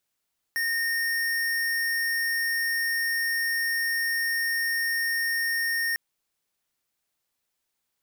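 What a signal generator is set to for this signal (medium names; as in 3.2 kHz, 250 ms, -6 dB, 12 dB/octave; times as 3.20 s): tone square 1.84 kHz -26.5 dBFS 5.40 s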